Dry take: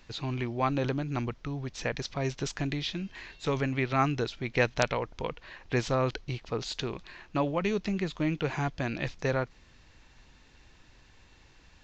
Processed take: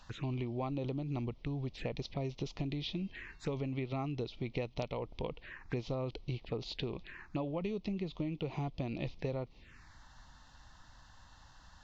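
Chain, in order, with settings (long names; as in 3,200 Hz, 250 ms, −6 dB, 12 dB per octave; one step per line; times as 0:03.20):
low-pass filter 2,600 Hz 6 dB per octave
phaser swept by the level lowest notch 350 Hz, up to 1,600 Hz, full sweep at −33.5 dBFS
downward compressor 10 to 1, threshold −33 dBFS, peak gain reduction 11 dB
one half of a high-frequency compander encoder only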